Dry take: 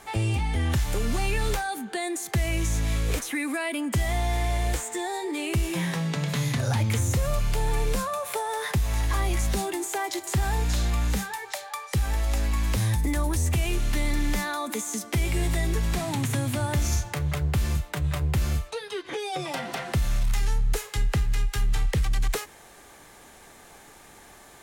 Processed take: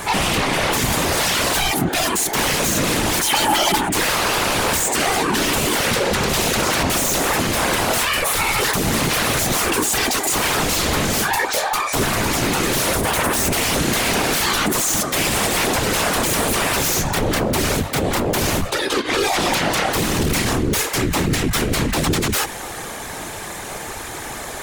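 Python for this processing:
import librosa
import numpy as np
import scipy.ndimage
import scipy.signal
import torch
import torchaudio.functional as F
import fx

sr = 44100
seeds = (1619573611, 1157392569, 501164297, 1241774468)

y = fx.fold_sine(x, sr, drive_db=16, ceiling_db=-16.0)
y = fx.whisperise(y, sr, seeds[0])
y = fx.small_body(y, sr, hz=(860.0, 3100.0), ring_ms=45, db=14, at=(3.23, 3.76))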